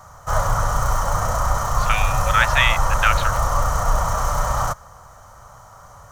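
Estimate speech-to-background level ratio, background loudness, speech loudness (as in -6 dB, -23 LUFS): 1.0 dB, -22.0 LUFS, -21.0 LUFS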